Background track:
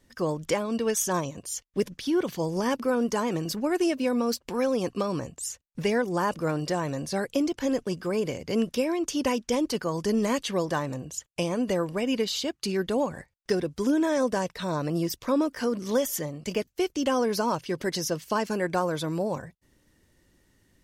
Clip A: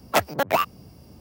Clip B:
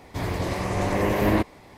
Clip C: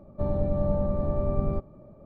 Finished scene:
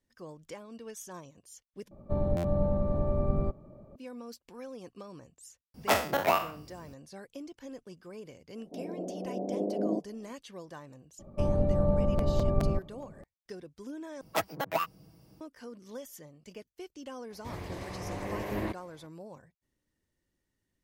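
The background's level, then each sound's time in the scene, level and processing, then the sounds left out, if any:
background track -18 dB
1.91 s: replace with C -2 dB + buffer glitch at 0.45 s, times 6
5.74 s: add A -7 dB + spectral sustain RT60 0.43 s
8.57 s: add B -7 dB + Chebyshev band-pass 180–700 Hz, order 4
11.19 s: add C -0.5 dB + crackling interface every 0.21 s, samples 256, repeat, from 0.99 s
14.21 s: replace with A -11 dB + comb 6.2 ms, depth 62%
17.30 s: add B -13 dB

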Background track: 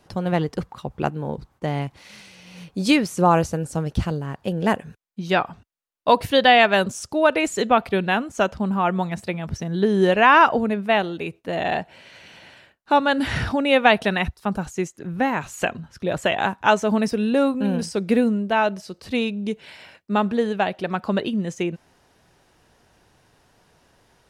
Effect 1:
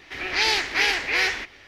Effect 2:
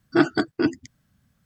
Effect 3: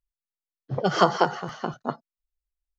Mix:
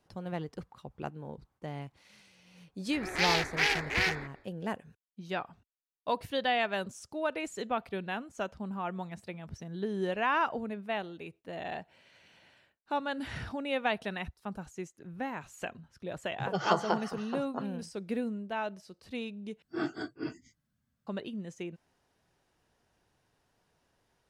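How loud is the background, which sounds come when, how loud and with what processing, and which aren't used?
background track -15 dB
2.82 s: add 1 -4.5 dB, fades 0.10 s + local Wiener filter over 15 samples
15.69 s: add 3 -9 dB
19.62 s: replace with 2 -14.5 dB + phase randomisation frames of 100 ms

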